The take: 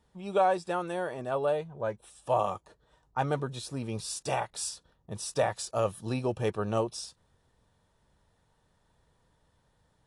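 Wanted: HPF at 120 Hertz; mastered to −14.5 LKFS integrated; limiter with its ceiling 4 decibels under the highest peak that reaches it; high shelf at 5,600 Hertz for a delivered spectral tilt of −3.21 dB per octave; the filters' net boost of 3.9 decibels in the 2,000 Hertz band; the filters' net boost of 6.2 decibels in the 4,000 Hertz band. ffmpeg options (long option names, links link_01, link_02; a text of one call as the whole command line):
ffmpeg -i in.wav -af "highpass=120,equalizer=frequency=2000:width_type=o:gain=3.5,equalizer=frequency=4000:width_type=o:gain=4.5,highshelf=frequency=5600:gain=6,volume=17.5dB,alimiter=limit=-0.5dB:level=0:latency=1" out.wav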